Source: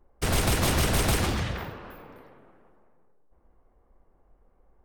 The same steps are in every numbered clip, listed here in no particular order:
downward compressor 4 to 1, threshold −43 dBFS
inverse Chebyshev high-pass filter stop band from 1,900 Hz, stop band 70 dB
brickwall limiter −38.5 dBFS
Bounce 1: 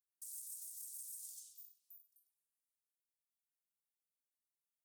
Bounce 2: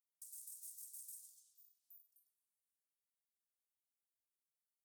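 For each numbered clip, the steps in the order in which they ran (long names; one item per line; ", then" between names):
inverse Chebyshev high-pass filter, then downward compressor, then brickwall limiter
downward compressor, then inverse Chebyshev high-pass filter, then brickwall limiter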